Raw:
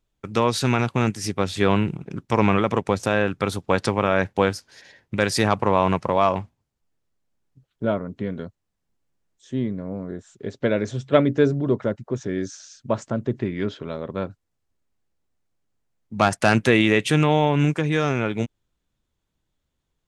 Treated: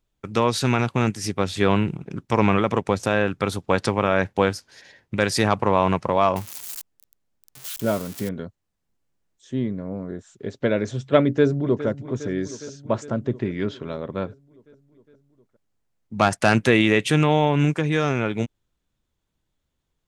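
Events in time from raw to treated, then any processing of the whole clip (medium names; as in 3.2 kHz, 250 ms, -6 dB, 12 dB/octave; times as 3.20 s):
6.36–8.29 s: zero-crossing glitches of -23 dBFS
11.23–11.87 s: echo throw 410 ms, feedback 70%, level -14 dB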